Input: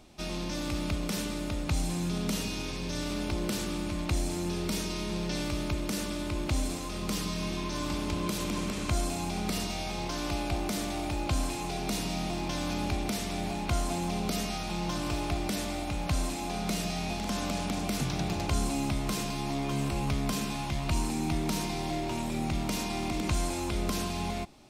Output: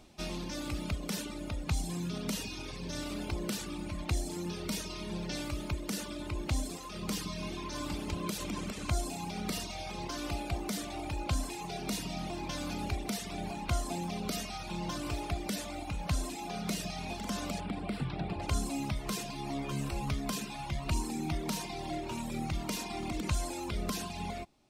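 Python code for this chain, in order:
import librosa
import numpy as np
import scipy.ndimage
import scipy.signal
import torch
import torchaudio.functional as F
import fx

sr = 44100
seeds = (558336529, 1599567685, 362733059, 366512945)

y = fx.dereverb_blind(x, sr, rt60_s=1.5)
y = fx.moving_average(y, sr, points=7, at=(17.59, 18.41), fade=0.02)
y = y * librosa.db_to_amplitude(-1.5)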